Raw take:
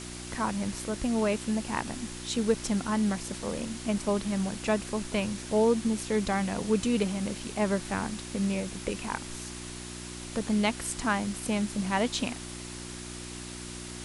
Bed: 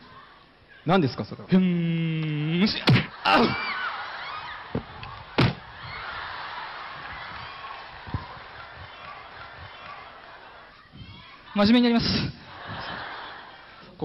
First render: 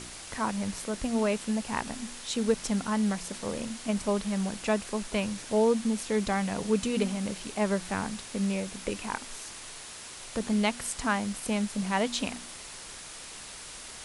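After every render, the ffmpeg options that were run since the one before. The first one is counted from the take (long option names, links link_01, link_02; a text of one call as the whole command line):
ffmpeg -i in.wav -af "bandreject=frequency=60:width_type=h:width=4,bandreject=frequency=120:width_type=h:width=4,bandreject=frequency=180:width_type=h:width=4,bandreject=frequency=240:width_type=h:width=4,bandreject=frequency=300:width_type=h:width=4,bandreject=frequency=360:width_type=h:width=4" out.wav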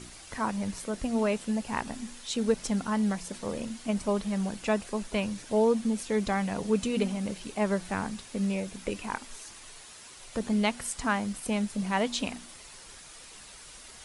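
ffmpeg -i in.wav -af "afftdn=noise_reduction=7:noise_floor=-44" out.wav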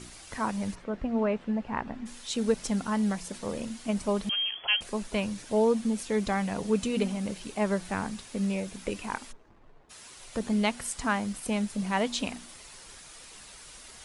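ffmpeg -i in.wav -filter_complex "[0:a]asplit=3[link_01][link_02][link_03];[link_01]afade=type=out:start_time=0.74:duration=0.02[link_04];[link_02]lowpass=2000,afade=type=in:start_time=0.74:duration=0.02,afade=type=out:start_time=2.05:duration=0.02[link_05];[link_03]afade=type=in:start_time=2.05:duration=0.02[link_06];[link_04][link_05][link_06]amix=inputs=3:normalize=0,asettb=1/sr,asplit=3[link_07][link_08][link_09];[link_07]atrim=end=4.294[link_10];[link_08]atrim=start=4.29:end=4.81,asetpts=PTS-STARTPTS,afade=type=in:duration=0.004:curve=qsin,afade=type=out:start_time=0.516:duration=0.004:curve=qsin,lowpass=frequency=2900:width_type=q:width=0.5098,lowpass=frequency=2900:width_type=q:width=0.6013,lowpass=frequency=2900:width_type=q:width=0.9,lowpass=frequency=2900:width_type=q:width=2.563,afreqshift=-3400[link_11];[link_09]atrim=start=4.806[link_12];[link_10][link_11]acrossfade=duration=0.004:curve1=hsin:curve2=qsin[link_13];[link_13][link_12]acrossfade=duration=0.004:curve1=qsin:curve2=hsin,asplit=3[link_14][link_15][link_16];[link_14]afade=type=out:start_time=9.31:duration=0.02[link_17];[link_15]adynamicsmooth=sensitivity=5.5:basefreq=600,afade=type=in:start_time=9.31:duration=0.02,afade=type=out:start_time=9.89:duration=0.02[link_18];[link_16]afade=type=in:start_time=9.89:duration=0.02[link_19];[link_17][link_18][link_19]amix=inputs=3:normalize=0" out.wav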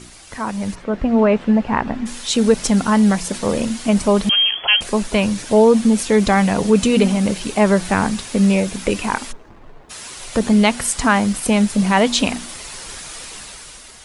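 ffmpeg -i in.wav -filter_complex "[0:a]asplit=2[link_01][link_02];[link_02]alimiter=limit=-22.5dB:level=0:latency=1:release=28,volume=-1dB[link_03];[link_01][link_03]amix=inputs=2:normalize=0,dynaudnorm=framelen=200:gausssize=9:maxgain=11.5dB" out.wav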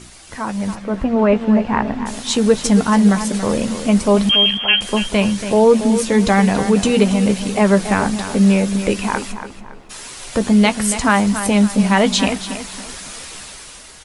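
ffmpeg -i in.wav -filter_complex "[0:a]asplit=2[link_01][link_02];[link_02]adelay=15,volume=-11dB[link_03];[link_01][link_03]amix=inputs=2:normalize=0,asplit=2[link_04][link_05];[link_05]adelay=281,lowpass=frequency=4700:poles=1,volume=-10dB,asplit=2[link_06][link_07];[link_07]adelay=281,lowpass=frequency=4700:poles=1,volume=0.36,asplit=2[link_08][link_09];[link_09]adelay=281,lowpass=frequency=4700:poles=1,volume=0.36,asplit=2[link_10][link_11];[link_11]adelay=281,lowpass=frequency=4700:poles=1,volume=0.36[link_12];[link_04][link_06][link_08][link_10][link_12]amix=inputs=5:normalize=0" out.wav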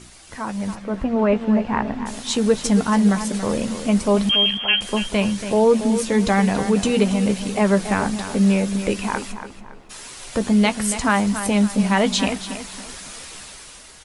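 ffmpeg -i in.wav -af "volume=-4dB" out.wav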